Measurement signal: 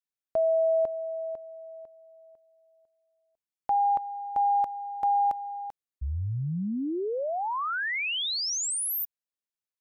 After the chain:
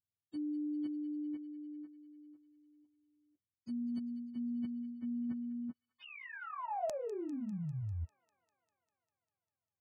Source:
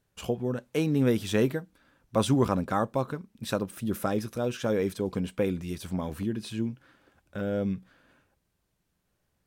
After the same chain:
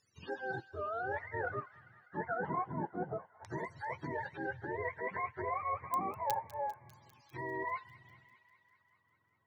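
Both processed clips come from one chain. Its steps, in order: spectrum mirrored in octaves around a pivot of 440 Hz; high shelf 3000 Hz +2.5 dB; reverse; compressor 5:1, threshold -35 dBFS; reverse; LFO low-pass saw down 0.29 Hz 570–6200 Hz; in parallel at -11.5 dB: bit-crush 4-bit; on the sum: pre-emphasis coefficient 0.8; thin delay 0.199 s, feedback 72%, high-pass 1900 Hz, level -14 dB; gain +11 dB

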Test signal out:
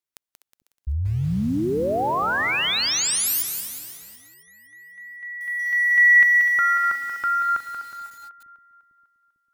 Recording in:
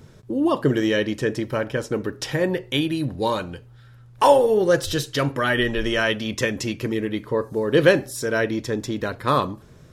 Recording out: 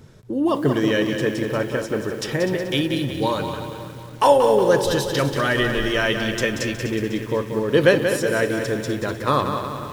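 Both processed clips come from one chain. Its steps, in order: split-band echo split 330 Hz, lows 0.449 s, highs 0.249 s, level -12 dB; lo-fi delay 0.183 s, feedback 55%, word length 7-bit, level -7 dB

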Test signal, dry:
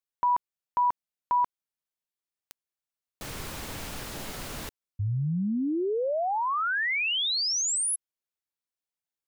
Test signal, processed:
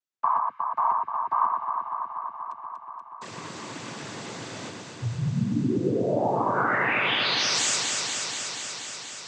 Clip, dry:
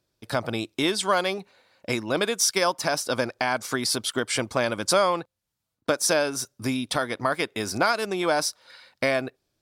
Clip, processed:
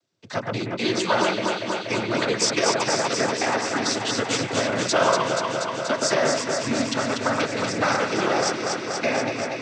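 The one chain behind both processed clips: noise vocoder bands 16; echo with dull and thin repeats by turns 0.12 s, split 2200 Hz, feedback 88%, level -3 dB

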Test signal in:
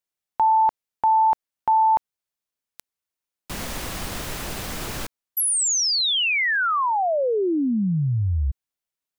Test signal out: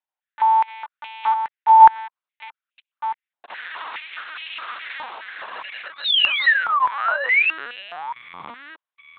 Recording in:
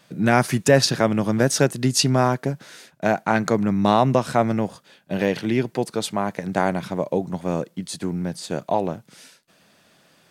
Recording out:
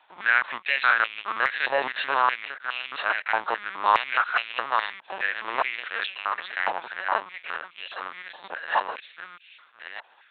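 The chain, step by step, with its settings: reverse delay 0.625 s, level -2 dB; in parallel at -5.5 dB: sample-and-hold 39×; on the sum: LPC vocoder at 8 kHz pitch kept; stepped high-pass 4.8 Hz 890–2600 Hz; gain -4 dB

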